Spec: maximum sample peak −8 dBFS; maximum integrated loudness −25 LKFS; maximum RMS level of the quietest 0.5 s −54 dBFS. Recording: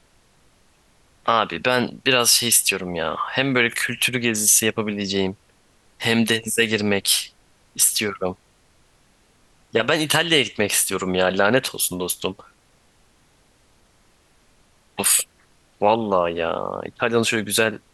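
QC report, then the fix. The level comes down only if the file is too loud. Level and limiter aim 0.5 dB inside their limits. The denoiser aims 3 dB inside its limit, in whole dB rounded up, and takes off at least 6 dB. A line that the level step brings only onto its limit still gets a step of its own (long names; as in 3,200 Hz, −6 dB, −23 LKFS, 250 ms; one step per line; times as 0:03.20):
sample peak −3.5 dBFS: out of spec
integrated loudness −19.5 LKFS: out of spec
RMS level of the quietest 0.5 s −58 dBFS: in spec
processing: level −6 dB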